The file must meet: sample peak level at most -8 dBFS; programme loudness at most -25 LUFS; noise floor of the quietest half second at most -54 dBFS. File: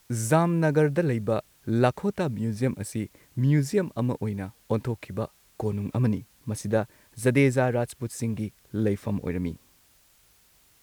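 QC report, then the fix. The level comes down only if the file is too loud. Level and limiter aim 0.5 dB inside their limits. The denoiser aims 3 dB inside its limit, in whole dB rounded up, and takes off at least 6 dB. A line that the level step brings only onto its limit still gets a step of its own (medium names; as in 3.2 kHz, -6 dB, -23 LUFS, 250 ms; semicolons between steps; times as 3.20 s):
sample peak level -7.5 dBFS: fail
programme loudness -27.0 LUFS: pass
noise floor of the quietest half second -61 dBFS: pass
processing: peak limiter -8.5 dBFS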